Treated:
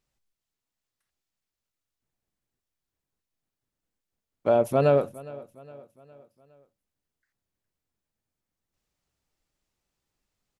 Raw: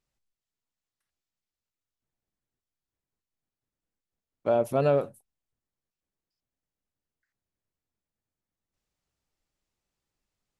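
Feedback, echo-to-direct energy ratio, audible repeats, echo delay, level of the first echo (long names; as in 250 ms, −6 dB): 49%, −19.0 dB, 3, 411 ms, −20.0 dB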